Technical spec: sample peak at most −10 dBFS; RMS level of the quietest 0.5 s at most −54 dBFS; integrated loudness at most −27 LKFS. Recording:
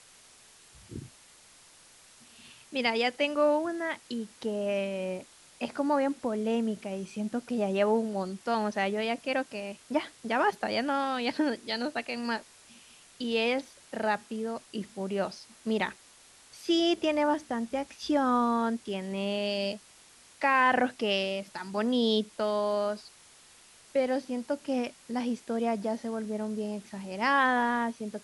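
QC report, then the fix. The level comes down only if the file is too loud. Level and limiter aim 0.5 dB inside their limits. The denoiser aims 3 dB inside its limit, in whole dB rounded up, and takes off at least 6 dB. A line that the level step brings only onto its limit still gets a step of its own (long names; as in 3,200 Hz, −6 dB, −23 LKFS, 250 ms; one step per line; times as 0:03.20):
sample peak −12.5 dBFS: in spec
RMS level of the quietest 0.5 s −56 dBFS: in spec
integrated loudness −30.0 LKFS: in spec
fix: no processing needed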